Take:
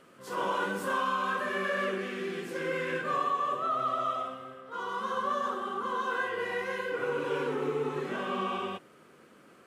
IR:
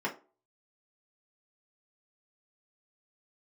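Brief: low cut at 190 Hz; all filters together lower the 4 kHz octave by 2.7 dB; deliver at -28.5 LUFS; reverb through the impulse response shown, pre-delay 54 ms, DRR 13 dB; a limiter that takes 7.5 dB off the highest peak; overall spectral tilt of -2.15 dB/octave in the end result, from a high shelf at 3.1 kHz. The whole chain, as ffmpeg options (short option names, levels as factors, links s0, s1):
-filter_complex "[0:a]highpass=190,highshelf=f=3100:g=4.5,equalizer=f=4000:t=o:g=-7.5,alimiter=level_in=1.33:limit=0.0631:level=0:latency=1,volume=0.75,asplit=2[s0][s1];[1:a]atrim=start_sample=2205,adelay=54[s2];[s1][s2]afir=irnorm=-1:irlink=0,volume=0.1[s3];[s0][s3]amix=inputs=2:normalize=0,volume=2.11"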